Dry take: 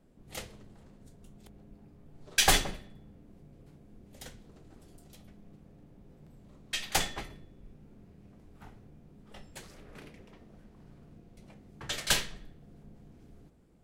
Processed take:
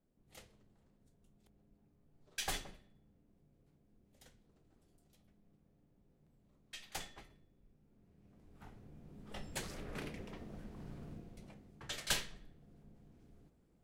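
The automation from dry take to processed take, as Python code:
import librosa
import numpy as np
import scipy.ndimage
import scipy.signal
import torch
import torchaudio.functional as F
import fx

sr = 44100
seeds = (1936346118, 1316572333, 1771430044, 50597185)

y = fx.gain(x, sr, db=fx.line((7.85, -16.0), (8.55, -6.0), (9.59, 5.0), (11.1, 5.0), (11.8, -8.0)))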